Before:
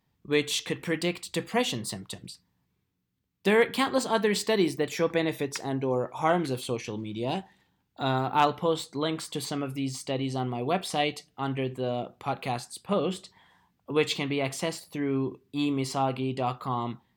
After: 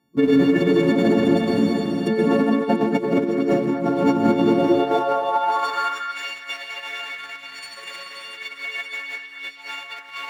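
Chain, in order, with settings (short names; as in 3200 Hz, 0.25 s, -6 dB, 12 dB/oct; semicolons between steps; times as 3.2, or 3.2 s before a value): frequency quantiser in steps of 4 st; time stretch by phase-locked vocoder 0.6×; treble ducked by the level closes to 1500 Hz, closed at -20.5 dBFS; spectral delete 6.88–7.77, 310–4400 Hz; in parallel at -8.5 dB: Schmitt trigger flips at -37 dBFS; on the sum: tilt -3 dB/oct; reverb RT60 4.0 s, pre-delay 81 ms, DRR -4 dB; negative-ratio compressor -19 dBFS, ratio -0.5; high-pass sweep 230 Hz -> 2100 Hz, 4.44–6.17; delay with a stepping band-pass 0.228 s, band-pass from 1400 Hz, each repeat 1.4 oct, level -4 dB; gain -1 dB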